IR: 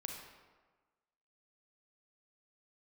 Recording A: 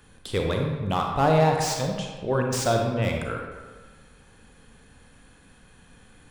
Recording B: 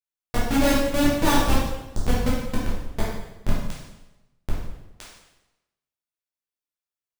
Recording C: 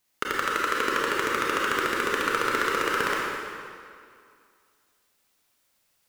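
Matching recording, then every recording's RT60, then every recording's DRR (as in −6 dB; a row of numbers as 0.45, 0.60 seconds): A; 1.4, 1.0, 2.3 seconds; 1.5, −7.5, −4.5 decibels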